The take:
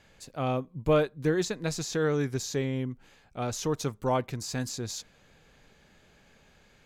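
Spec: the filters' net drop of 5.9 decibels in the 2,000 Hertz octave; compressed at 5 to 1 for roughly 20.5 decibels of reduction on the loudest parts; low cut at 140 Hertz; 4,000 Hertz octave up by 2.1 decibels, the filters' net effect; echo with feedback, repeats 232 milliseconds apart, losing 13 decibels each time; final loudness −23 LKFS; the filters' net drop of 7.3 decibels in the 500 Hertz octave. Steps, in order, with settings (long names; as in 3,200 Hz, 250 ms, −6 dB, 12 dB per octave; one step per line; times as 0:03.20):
high-pass filter 140 Hz
parametric band 500 Hz −8.5 dB
parametric band 2,000 Hz −8.5 dB
parametric band 4,000 Hz +4.5 dB
downward compressor 5 to 1, threshold −48 dBFS
repeating echo 232 ms, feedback 22%, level −13 dB
level +26.5 dB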